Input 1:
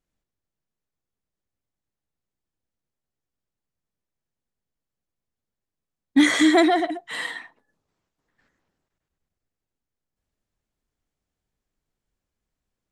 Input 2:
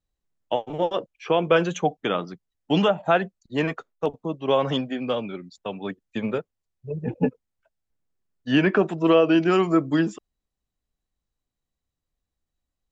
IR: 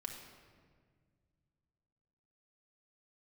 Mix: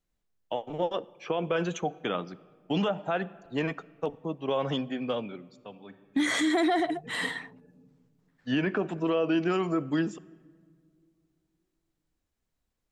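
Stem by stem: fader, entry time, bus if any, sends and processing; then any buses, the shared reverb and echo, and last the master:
-1.5 dB, 0.00 s, no send, dry
-5.5 dB, 0.00 s, send -14.5 dB, auto duck -22 dB, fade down 0.95 s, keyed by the first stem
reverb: on, RT60 1.8 s, pre-delay 4 ms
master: limiter -18.5 dBFS, peak gain reduction 10 dB

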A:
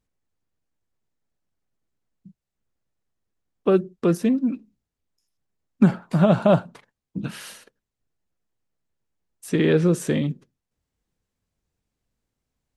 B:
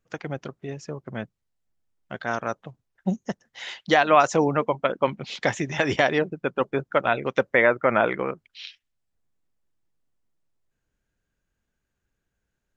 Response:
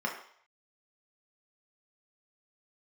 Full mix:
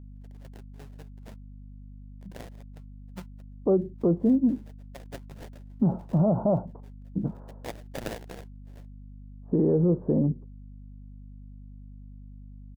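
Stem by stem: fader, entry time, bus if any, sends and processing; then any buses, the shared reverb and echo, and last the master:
+0.5 dB, 0.00 s, no send, steep low-pass 930 Hz 36 dB/oct; hum 50 Hz, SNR 19 dB
-17.0 dB, 0.10 s, no send, band shelf 2500 Hz +9 dB 1.2 oct; step gate "x..xx.xx..x.x" 130 bpm -12 dB; sample-rate reducer 1200 Hz, jitter 20%; auto duck -21 dB, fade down 0.35 s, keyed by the first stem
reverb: off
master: limiter -14.5 dBFS, peak gain reduction 10 dB

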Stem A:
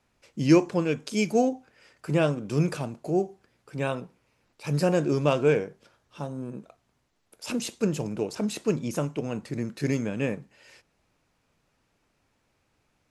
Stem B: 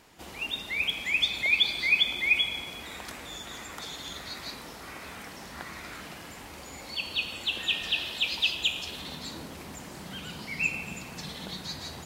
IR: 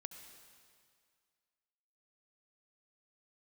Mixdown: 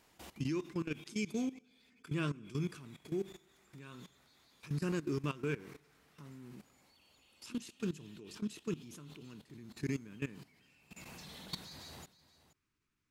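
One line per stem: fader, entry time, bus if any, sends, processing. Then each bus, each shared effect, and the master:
-9.5 dB, 0.00 s, send -5.5 dB, no echo send, band shelf 640 Hz -15.5 dB 1 oct
0.0 dB, 0.00 s, no send, echo send -23.5 dB, high shelf 7900 Hz +4.5 dB; negative-ratio compressor -35 dBFS, ratio -0.5; soft clip -28 dBFS, distortion -17 dB; auto duck -20 dB, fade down 0.55 s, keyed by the first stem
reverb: on, RT60 2.1 s, pre-delay 63 ms
echo: echo 0.476 s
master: level quantiser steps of 17 dB

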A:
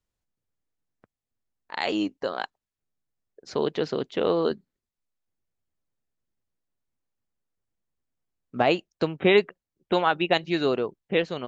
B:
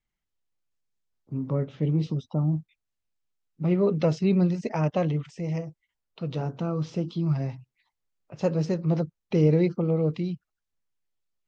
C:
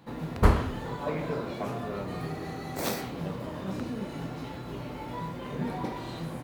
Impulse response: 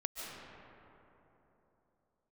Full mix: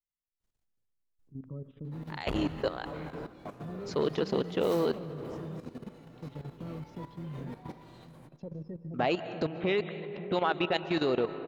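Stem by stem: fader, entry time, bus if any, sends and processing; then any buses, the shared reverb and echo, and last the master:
0.0 dB, 0.40 s, bus A, send -11.5 dB, dry
-12.0 dB, 0.00 s, no bus, send -7.5 dB, spectral gate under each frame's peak -25 dB strong; bell 760 Hz -8 dB 1.2 oct; limiter -20.5 dBFS, peak gain reduction 8.5 dB
-9.0 dB, 1.85 s, bus A, send -12 dB, dry
bus A: 0.0 dB, low shelf 150 Hz +2 dB; limiter -16.5 dBFS, peak gain reduction 10.5 dB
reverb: on, RT60 3.5 s, pre-delay 0.105 s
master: level quantiser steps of 13 dB; core saturation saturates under 530 Hz

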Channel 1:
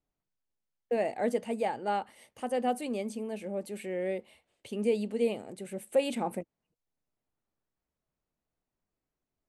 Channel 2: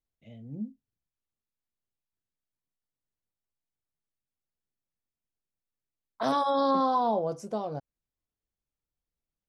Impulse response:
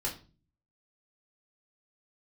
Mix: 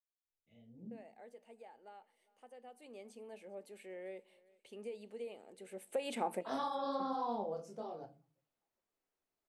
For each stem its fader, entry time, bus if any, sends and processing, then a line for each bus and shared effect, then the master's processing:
2.61 s -21.5 dB -> 3.17 s -12 dB -> 5.45 s -12 dB -> 6.11 s -1 dB, 0.00 s, send -18.5 dB, echo send -23 dB, tone controls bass -13 dB, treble 0 dB; compressor, threshold -30 dBFS, peak gain reduction 9 dB; high shelf 6800 Hz -4.5 dB
-11.0 dB, 0.25 s, send -6.5 dB, no echo send, detuned doubles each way 49 cents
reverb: on, RT60 0.35 s, pre-delay 4 ms
echo: feedback echo 0.4 s, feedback 45%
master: low shelf 65 Hz -9 dB

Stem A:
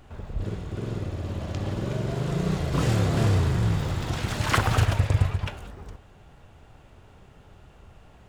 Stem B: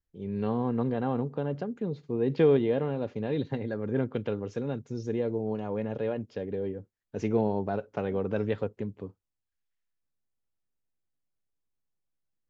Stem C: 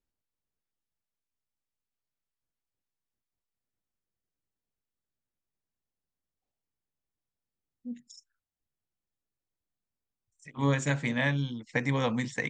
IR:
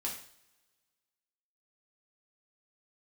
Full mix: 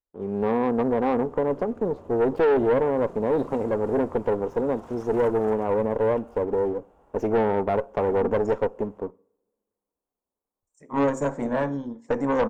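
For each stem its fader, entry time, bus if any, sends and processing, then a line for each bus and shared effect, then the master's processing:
-9.5 dB, 0.70 s, no send, compressor 2:1, threshold -37 dBFS, peak gain reduction 12 dB
-5.0 dB, 0.00 s, send -18 dB, sample leveller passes 2
+2.0 dB, 0.35 s, send -12 dB, bell 2700 Hz -12.5 dB 1.5 oct; ending taper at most 350 dB/s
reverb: on, pre-delay 3 ms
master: ten-band EQ 125 Hz -10 dB, 250 Hz +5 dB, 500 Hz +9 dB, 1000 Hz +11 dB, 2000 Hz -4 dB, 4000 Hz -10 dB; tube stage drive 16 dB, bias 0.55

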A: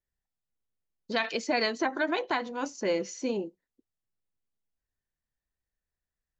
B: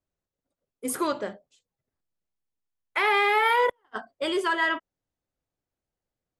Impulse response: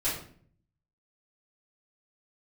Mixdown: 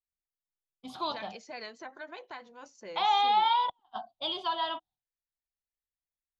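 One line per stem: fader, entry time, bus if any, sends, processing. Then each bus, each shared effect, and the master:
-14.0 dB, 0.00 s, no send, vibrato 4.7 Hz 32 cents
-5.0 dB, 0.00 s, no send, EQ curve 320 Hz 0 dB, 470 Hz -21 dB, 740 Hz +11 dB, 1900 Hz -17 dB, 3700 Hz +12 dB, 8700 Hz -27 dB; expander -51 dBFS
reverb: off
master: bell 290 Hz -8.5 dB 0.69 oct

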